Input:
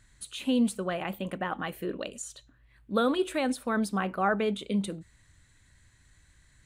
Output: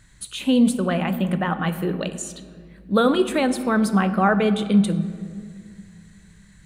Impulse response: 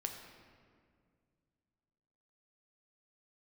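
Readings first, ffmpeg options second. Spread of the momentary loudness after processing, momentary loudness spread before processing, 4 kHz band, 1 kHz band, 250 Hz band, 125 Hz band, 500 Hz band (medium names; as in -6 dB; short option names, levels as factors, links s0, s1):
15 LU, 11 LU, +7.5 dB, +7.5 dB, +10.5 dB, +14.0 dB, +7.5 dB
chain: -filter_complex "[0:a]asplit=2[s0][s1];[s1]equalizer=f=170:t=o:w=0.48:g=15[s2];[1:a]atrim=start_sample=2205[s3];[s2][s3]afir=irnorm=-1:irlink=0,volume=0.891[s4];[s0][s4]amix=inputs=2:normalize=0,volume=1.33"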